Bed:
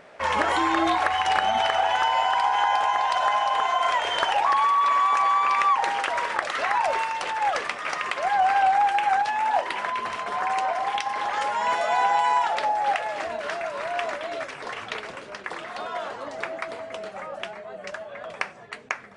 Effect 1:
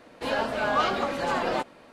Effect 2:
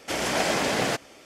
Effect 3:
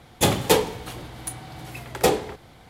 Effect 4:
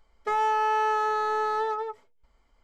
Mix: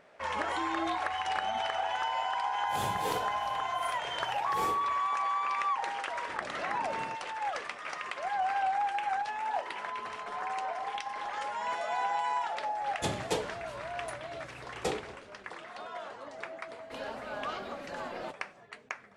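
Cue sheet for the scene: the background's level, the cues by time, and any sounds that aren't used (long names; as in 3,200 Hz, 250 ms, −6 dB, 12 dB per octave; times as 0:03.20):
bed −10 dB
0:02.58: mix in 3 −17 dB + random phases in long frames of 200 ms
0:06.19: mix in 2 −17 dB + low-pass filter 1,000 Hz
0:09.03: mix in 4 −13.5 dB + downward compressor 2.5 to 1, threshold −41 dBFS
0:12.81: mix in 3 −13.5 dB + low-pass filter 9,500 Hz 24 dB per octave
0:16.69: mix in 1 −13.5 dB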